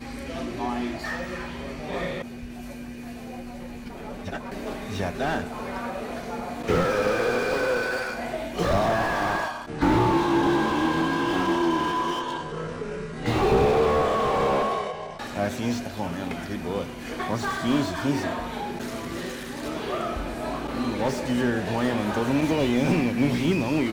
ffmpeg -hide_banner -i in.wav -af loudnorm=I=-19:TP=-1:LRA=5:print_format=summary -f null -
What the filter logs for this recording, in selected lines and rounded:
Input Integrated:    -25.8 LUFS
Input True Peak:      -8.4 dBTP
Input LRA:             8.7 LU
Input Threshold:     -36.1 LUFS